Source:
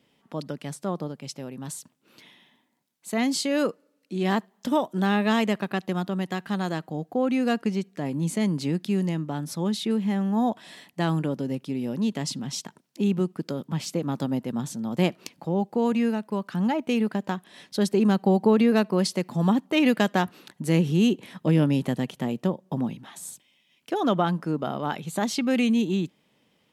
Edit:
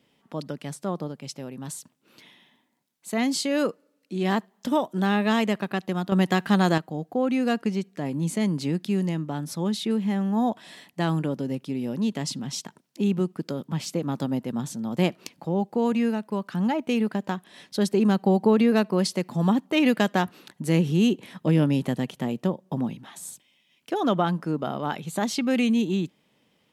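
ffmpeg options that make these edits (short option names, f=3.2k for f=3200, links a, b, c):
-filter_complex "[0:a]asplit=3[a][b][c];[a]atrim=end=6.122[d];[b]atrim=start=6.118:end=6.782,asetpts=PTS-STARTPTS,volume=7.5dB[e];[c]atrim=start=6.778[f];[d][e]acrossfade=d=0.004:c1=hsin:c2=hsin[g];[g][f]acrossfade=d=0.004:c1=hsin:c2=hsin"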